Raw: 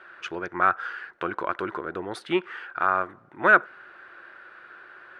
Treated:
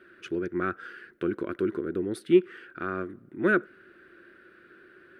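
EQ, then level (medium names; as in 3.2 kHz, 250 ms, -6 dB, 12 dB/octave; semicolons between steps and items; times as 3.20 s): FFT filter 150 Hz 0 dB, 230 Hz +5 dB, 380 Hz +2 dB, 870 Hz -25 dB, 1.5 kHz -12 dB, 6.7 kHz -9 dB, 11 kHz +2 dB; +3.5 dB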